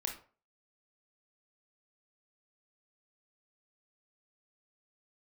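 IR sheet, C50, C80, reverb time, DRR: 8.0 dB, 14.0 dB, 0.40 s, 1.5 dB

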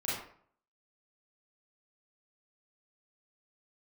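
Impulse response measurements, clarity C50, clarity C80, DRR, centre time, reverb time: 0.0 dB, 5.0 dB, -9.0 dB, 61 ms, 0.55 s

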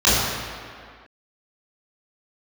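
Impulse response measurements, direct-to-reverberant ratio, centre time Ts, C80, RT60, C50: -11.0 dB, 0.129 s, 0.0 dB, 2.1 s, -2.0 dB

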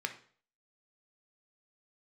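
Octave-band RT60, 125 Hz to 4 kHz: 0.50, 0.45, 0.50, 0.45, 0.45, 0.45 s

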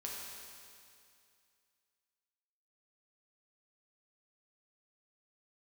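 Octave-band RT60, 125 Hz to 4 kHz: 2.4, 2.4, 2.4, 2.4, 2.4, 2.4 s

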